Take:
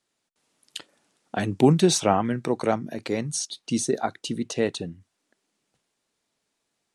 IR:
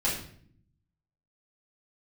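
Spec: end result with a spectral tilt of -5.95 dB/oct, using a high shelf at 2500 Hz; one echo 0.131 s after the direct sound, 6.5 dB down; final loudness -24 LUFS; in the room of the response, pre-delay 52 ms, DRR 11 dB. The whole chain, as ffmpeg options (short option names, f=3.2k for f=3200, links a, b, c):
-filter_complex "[0:a]highshelf=f=2.5k:g=-7,aecho=1:1:131:0.473,asplit=2[a][b];[1:a]atrim=start_sample=2205,adelay=52[c];[b][c]afir=irnorm=-1:irlink=0,volume=-20.5dB[d];[a][d]amix=inputs=2:normalize=0,volume=0.5dB"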